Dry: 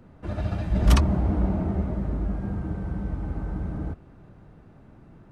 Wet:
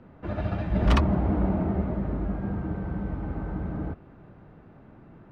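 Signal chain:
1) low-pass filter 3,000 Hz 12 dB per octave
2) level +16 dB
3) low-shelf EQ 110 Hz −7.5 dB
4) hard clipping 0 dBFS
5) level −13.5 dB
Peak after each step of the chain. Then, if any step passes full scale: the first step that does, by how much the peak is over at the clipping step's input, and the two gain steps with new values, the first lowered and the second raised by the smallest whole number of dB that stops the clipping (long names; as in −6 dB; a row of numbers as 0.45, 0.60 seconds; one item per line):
−6.5, +9.5, +6.5, 0.0, −13.5 dBFS
step 2, 6.5 dB
step 2 +9 dB, step 5 −6.5 dB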